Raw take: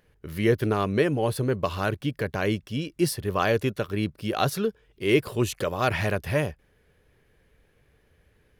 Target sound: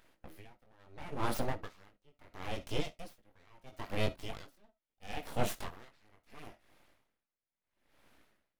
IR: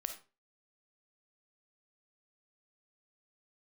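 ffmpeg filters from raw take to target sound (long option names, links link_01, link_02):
-filter_complex "[0:a]highpass=frequency=99:width=0.5412,highpass=frequency=99:width=1.3066,asplit=2[link_01][link_02];[link_02]acompressor=threshold=-34dB:ratio=6,volume=-1dB[link_03];[link_01][link_03]amix=inputs=2:normalize=0,alimiter=limit=-12.5dB:level=0:latency=1:release=381,flanger=delay=18.5:depth=3.1:speed=0.62,aeval=exprs='abs(val(0))':channel_layout=same,asplit=2[link_04][link_05];[1:a]atrim=start_sample=2205,atrim=end_sample=3528[link_06];[link_05][link_06]afir=irnorm=-1:irlink=0,volume=-2dB[link_07];[link_04][link_07]amix=inputs=2:normalize=0,aeval=exprs='val(0)*pow(10,-35*(0.5-0.5*cos(2*PI*0.74*n/s))/20)':channel_layout=same,volume=-4dB"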